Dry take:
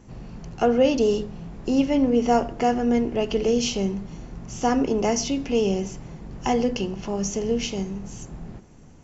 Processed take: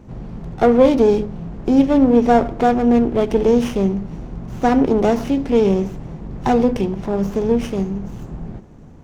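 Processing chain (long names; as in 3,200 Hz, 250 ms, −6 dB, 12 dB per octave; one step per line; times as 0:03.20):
high-shelf EQ 2,200 Hz −11 dB
windowed peak hold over 9 samples
level +7.5 dB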